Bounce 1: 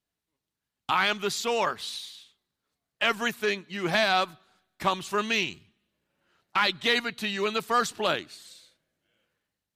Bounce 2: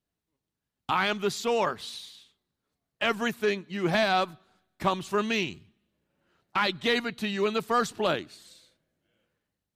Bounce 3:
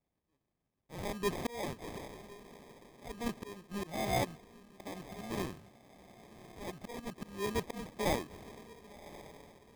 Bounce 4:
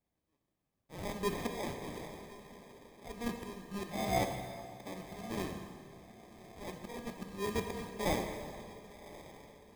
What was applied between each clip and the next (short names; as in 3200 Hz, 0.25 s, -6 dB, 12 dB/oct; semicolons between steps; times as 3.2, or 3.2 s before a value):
tilt shelf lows +4 dB, about 770 Hz
auto swell 0.757 s; diffused feedback echo 1.096 s, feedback 41%, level -16 dB; sample-and-hold 31×; gain +1 dB
plate-style reverb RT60 2.1 s, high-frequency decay 0.85×, DRR 4 dB; gain -1.5 dB